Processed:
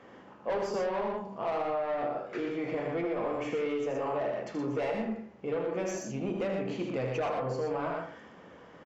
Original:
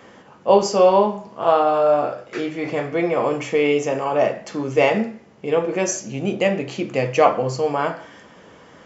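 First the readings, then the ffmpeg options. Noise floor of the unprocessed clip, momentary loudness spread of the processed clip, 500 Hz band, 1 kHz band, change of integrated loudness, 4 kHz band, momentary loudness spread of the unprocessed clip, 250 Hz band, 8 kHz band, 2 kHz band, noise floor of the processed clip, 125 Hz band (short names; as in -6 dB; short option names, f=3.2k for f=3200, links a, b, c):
-48 dBFS, 7 LU, -13.0 dB, -14.5 dB, -13.0 dB, -15.5 dB, 10 LU, -10.0 dB, n/a, -13.0 dB, -53 dBFS, -10.5 dB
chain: -filter_complex "[0:a]asoftclip=type=tanh:threshold=-17dB,lowpass=f=2k:p=1,bandreject=f=50:t=h:w=6,bandreject=f=100:t=h:w=6,bandreject=f=150:t=h:w=6,bandreject=f=200:t=h:w=6,asplit=2[a][b];[b]aecho=0:1:78.72|119.5:0.501|0.562[c];[a][c]amix=inputs=2:normalize=0,acompressor=threshold=-22dB:ratio=6,volume=-6.5dB"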